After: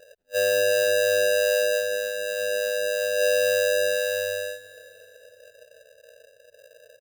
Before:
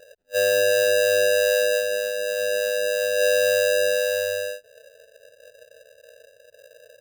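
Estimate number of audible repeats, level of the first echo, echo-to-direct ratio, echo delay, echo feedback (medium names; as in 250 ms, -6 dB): 3, -19.0 dB, -18.0 dB, 356 ms, 50%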